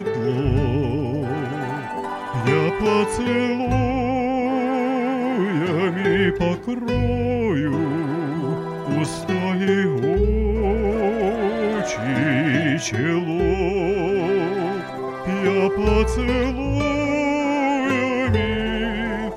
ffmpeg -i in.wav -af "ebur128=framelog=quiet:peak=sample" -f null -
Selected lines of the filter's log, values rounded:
Integrated loudness:
  I:         -21.3 LUFS
  Threshold: -31.3 LUFS
Loudness range:
  LRA:         1.5 LU
  Threshold: -41.2 LUFS
  LRA low:   -22.0 LUFS
  LRA high:  -20.5 LUFS
Sample peak:
  Peak:       -6.1 dBFS